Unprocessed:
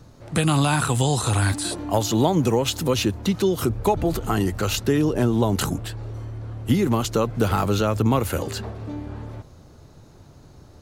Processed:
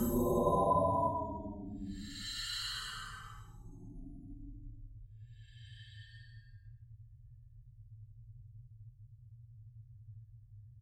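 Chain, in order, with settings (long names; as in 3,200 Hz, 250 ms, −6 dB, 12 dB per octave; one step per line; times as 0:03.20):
spectral dynamics exaggerated over time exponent 3
far-end echo of a speakerphone 280 ms, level −6 dB
extreme stretch with random phases 12×, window 0.10 s, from 0:05.67
level +7.5 dB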